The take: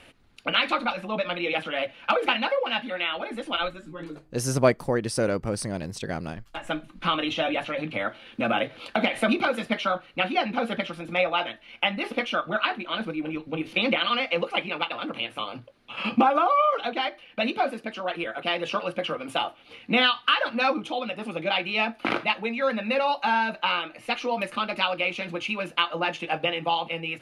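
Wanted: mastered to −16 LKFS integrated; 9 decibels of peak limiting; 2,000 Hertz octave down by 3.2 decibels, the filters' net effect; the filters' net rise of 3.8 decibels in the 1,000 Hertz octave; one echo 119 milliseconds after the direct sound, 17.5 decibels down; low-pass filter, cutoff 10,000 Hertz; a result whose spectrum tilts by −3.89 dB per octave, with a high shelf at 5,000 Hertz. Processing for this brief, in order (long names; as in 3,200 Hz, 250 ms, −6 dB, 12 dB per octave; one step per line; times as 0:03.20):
low-pass filter 10,000 Hz
parametric band 1,000 Hz +7 dB
parametric band 2,000 Hz −8.5 dB
high-shelf EQ 5,000 Hz +7.5 dB
brickwall limiter −13 dBFS
single-tap delay 119 ms −17.5 dB
level +10.5 dB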